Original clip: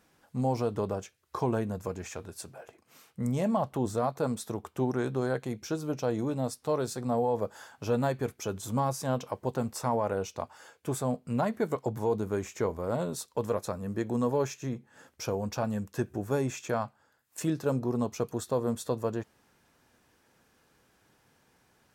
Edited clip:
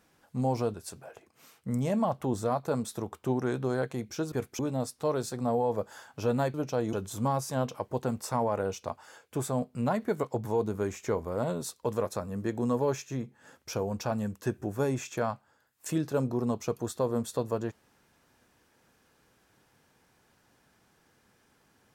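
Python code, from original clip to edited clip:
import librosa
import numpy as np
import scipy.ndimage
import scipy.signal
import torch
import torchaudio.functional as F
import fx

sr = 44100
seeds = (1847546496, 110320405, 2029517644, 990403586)

y = fx.edit(x, sr, fx.cut(start_s=0.74, length_s=1.52),
    fx.swap(start_s=5.84, length_s=0.39, other_s=8.18, other_length_s=0.27), tone=tone)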